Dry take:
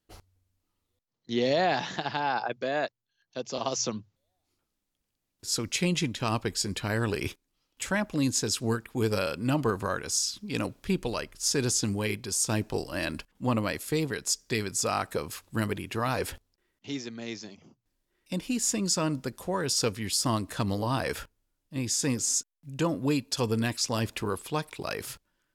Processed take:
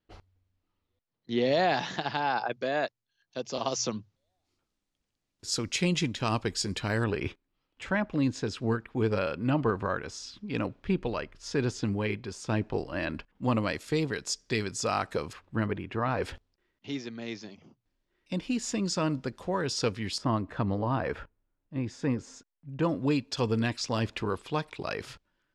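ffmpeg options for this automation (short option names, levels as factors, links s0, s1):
-af "asetnsamples=n=441:p=0,asendcmd='1.53 lowpass f 7100;7.04 lowpass f 2700;13.43 lowpass f 5400;15.33 lowpass f 2100;16.22 lowpass f 4400;20.18 lowpass f 1800;22.83 lowpass f 4400',lowpass=3600"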